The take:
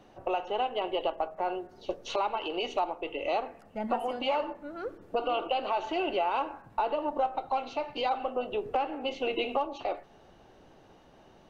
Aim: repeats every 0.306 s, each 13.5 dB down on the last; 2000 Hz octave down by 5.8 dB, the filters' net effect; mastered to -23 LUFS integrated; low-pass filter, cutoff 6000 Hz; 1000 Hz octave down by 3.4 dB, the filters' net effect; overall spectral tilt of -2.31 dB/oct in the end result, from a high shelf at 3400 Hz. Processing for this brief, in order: LPF 6000 Hz; bell 1000 Hz -3.5 dB; bell 2000 Hz -4.5 dB; high shelf 3400 Hz -7 dB; feedback echo 0.306 s, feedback 21%, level -13.5 dB; gain +11.5 dB

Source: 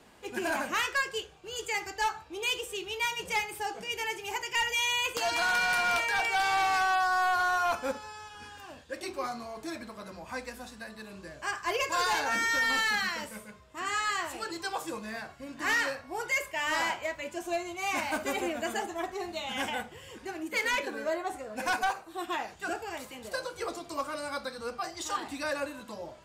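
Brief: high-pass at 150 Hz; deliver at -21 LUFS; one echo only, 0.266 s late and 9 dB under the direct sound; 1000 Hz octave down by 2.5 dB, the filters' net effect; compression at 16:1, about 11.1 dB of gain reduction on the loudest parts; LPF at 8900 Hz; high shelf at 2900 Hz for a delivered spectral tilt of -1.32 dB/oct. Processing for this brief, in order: HPF 150 Hz; LPF 8900 Hz; bell 1000 Hz -4 dB; high shelf 2900 Hz +3.5 dB; compressor 16:1, threshold -36 dBFS; echo 0.266 s -9 dB; gain +18 dB

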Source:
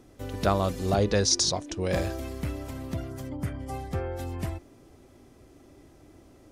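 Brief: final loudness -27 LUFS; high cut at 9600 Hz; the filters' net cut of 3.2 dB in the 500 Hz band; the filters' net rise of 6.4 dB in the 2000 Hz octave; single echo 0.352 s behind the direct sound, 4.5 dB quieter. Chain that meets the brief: LPF 9600 Hz; bell 500 Hz -4.5 dB; bell 2000 Hz +8.5 dB; echo 0.352 s -4.5 dB; gain +1 dB

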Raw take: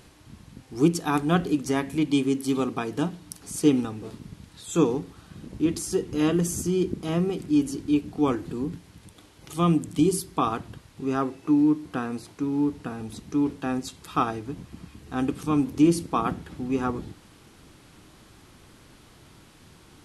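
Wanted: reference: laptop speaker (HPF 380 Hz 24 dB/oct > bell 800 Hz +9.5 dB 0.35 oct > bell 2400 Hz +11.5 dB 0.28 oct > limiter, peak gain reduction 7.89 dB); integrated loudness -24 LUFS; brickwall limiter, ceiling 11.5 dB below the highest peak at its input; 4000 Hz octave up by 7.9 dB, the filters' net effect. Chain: bell 4000 Hz +9 dB; limiter -18.5 dBFS; HPF 380 Hz 24 dB/oct; bell 800 Hz +9.5 dB 0.35 oct; bell 2400 Hz +11.5 dB 0.28 oct; gain +9.5 dB; limiter -12.5 dBFS

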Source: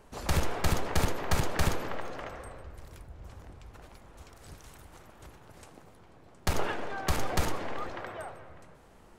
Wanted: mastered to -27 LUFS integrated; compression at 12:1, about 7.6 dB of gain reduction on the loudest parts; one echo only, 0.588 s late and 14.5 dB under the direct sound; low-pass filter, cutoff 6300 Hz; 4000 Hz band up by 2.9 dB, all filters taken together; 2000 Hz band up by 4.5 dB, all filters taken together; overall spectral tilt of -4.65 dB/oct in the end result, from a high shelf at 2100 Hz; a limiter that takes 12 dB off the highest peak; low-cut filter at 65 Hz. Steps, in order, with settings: HPF 65 Hz; LPF 6300 Hz; bell 2000 Hz +6.5 dB; high shelf 2100 Hz -4 dB; bell 4000 Hz +6 dB; compressor 12:1, threshold -31 dBFS; limiter -30 dBFS; echo 0.588 s -14.5 dB; gain +14.5 dB

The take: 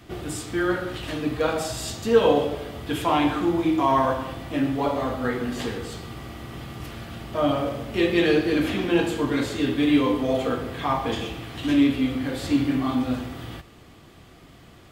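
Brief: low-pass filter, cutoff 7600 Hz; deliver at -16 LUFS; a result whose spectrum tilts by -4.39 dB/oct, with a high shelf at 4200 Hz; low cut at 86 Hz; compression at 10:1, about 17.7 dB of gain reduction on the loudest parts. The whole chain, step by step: HPF 86 Hz; LPF 7600 Hz; high shelf 4200 Hz +8.5 dB; compressor 10:1, threshold -30 dBFS; gain +18 dB

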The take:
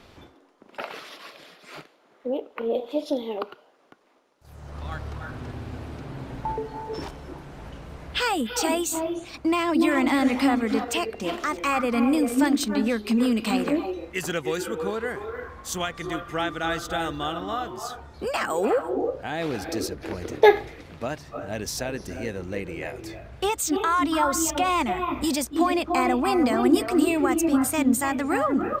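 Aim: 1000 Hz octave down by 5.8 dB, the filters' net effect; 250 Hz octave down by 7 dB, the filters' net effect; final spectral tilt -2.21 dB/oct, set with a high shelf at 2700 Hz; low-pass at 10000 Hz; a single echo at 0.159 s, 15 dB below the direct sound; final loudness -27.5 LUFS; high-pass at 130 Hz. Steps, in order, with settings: HPF 130 Hz; LPF 10000 Hz; bell 250 Hz -8 dB; bell 1000 Hz -8 dB; high shelf 2700 Hz +4.5 dB; echo 0.159 s -15 dB; gain +1 dB

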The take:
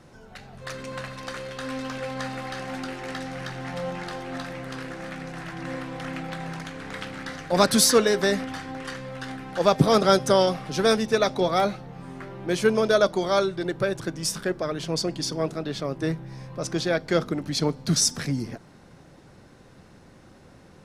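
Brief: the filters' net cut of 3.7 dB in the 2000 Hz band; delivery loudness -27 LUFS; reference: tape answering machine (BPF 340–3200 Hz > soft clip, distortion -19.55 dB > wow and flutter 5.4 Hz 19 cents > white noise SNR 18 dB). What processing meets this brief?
BPF 340–3200 Hz; bell 2000 Hz -4.5 dB; soft clip -12.5 dBFS; wow and flutter 5.4 Hz 19 cents; white noise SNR 18 dB; gain +2.5 dB

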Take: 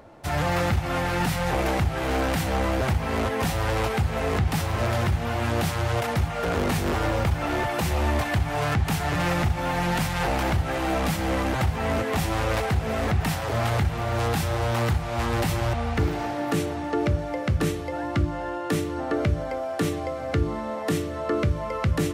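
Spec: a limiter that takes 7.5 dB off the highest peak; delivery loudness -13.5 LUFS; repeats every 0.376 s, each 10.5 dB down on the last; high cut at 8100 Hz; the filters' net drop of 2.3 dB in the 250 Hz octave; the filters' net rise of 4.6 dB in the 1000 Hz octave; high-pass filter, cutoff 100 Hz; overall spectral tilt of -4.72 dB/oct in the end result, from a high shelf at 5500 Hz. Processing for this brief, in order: HPF 100 Hz; LPF 8100 Hz; bell 250 Hz -3.5 dB; bell 1000 Hz +6.5 dB; high shelf 5500 Hz -7 dB; limiter -17.5 dBFS; feedback echo 0.376 s, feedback 30%, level -10.5 dB; gain +13.5 dB

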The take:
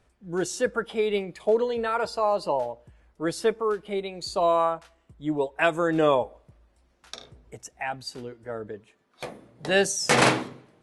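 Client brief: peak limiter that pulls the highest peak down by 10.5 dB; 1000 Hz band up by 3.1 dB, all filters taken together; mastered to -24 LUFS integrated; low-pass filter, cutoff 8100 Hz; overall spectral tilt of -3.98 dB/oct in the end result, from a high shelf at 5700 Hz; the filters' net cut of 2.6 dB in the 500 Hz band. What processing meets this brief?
LPF 8100 Hz; bell 500 Hz -5 dB; bell 1000 Hz +5.5 dB; high shelf 5700 Hz -3.5 dB; gain +4.5 dB; limiter -11 dBFS

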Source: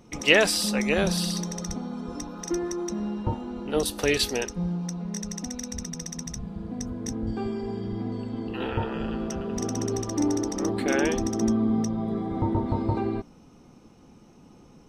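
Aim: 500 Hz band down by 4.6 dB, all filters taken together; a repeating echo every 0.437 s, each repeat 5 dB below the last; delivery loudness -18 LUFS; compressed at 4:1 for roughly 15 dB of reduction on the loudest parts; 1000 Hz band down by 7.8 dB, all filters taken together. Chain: bell 500 Hz -4 dB; bell 1000 Hz -9 dB; compressor 4:1, threshold -33 dBFS; feedback echo 0.437 s, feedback 56%, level -5 dB; gain +17 dB

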